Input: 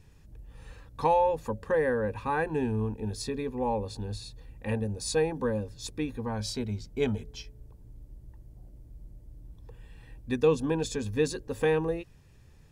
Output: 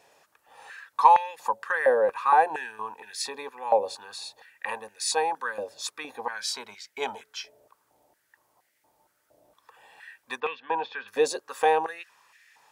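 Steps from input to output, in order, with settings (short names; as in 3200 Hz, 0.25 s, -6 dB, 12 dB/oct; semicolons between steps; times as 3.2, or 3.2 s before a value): dynamic EQ 1700 Hz, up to -4 dB, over -43 dBFS, Q 0.82; 10.4–11.08 inverse Chebyshev low-pass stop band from 7400 Hz, stop band 50 dB; stepped high-pass 4.3 Hz 650–1900 Hz; gain +5.5 dB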